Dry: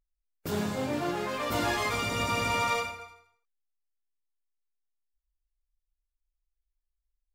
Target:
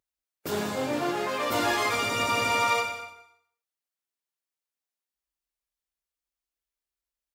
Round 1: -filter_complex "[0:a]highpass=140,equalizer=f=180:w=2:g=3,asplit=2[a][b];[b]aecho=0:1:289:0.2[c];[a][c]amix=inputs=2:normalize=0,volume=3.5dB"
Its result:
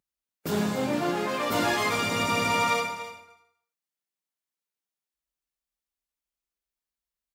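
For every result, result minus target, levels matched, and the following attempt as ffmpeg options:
echo 0.102 s late; 250 Hz band +3.5 dB
-filter_complex "[0:a]highpass=140,equalizer=f=180:w=2:g=3,asplit=2[a][b];[b]aecho=0:1:187:0.2[c];[a][c]amix=inputs=2:normalize=0,volume=3.5dB"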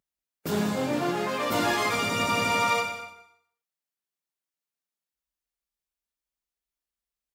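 250 Hz band +3.0 dB
-filter_complex "[0:a]highpass=140,equalizer=f=180:w=2:g=-7,asplit=2[a][b];[b]aecho=0:1:187:0.2[c];[a][c]amix=inputs=2:normalize=0,volume=3.5dB"

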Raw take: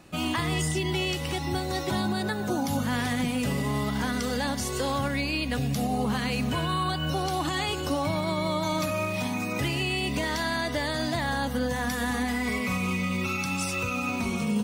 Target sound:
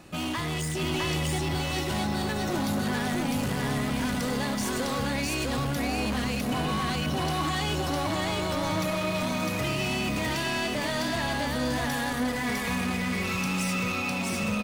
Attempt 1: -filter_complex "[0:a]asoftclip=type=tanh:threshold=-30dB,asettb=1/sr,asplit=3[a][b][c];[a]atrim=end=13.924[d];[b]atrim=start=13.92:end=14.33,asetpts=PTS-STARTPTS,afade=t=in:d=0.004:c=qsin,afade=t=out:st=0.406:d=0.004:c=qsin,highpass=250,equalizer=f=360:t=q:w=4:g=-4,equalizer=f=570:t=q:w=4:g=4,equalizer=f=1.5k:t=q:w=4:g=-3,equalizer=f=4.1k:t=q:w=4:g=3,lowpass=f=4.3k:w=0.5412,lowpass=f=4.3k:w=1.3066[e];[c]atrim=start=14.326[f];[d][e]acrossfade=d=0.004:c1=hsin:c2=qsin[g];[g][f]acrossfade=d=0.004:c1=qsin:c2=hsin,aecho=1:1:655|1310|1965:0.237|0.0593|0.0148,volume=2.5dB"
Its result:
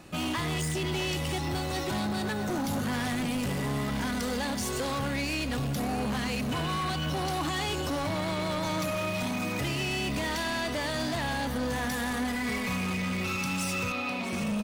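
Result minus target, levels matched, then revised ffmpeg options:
echo-to-direct -11 dB
-filter_complex "[0:a]asoftclip=type=tanh:threshold=-30dB,asettb=1/sr,asplit=3[a][b][c];[a]atrim=end=13.924[d];[b]atrim=start=13.92:end=14.33,asetpts=PTS-STARTPTS,afade=t=in:d=0.004:c=qsin,afade=t=out:st=0.406:d=0.004:c=qsin,highpass=250,equalizer=f=360:t=q:w=4:g=-4,equalizer=f=570:t=q:w=4:g=4,equalizer=f=1.5k:t=q:w=4:g=-3,equalizer=f=4.1k:t=q:w=4:g=3,lowpass=f=4.3k:w=0.5412,lowpass=f=4.3k:w=1.3066[e];[c]atrim=start=14.326[f];[d][e]acrossfade=d=0.004:c1=hsin:c2=qsin[g];[g][f]acrossfade=d=0.004:c1=qsin:c2=hsin,aecho=1:1:655|1310|1965|2620:0.841|0.21|0.0526|0.0131,volume=2.5dB"

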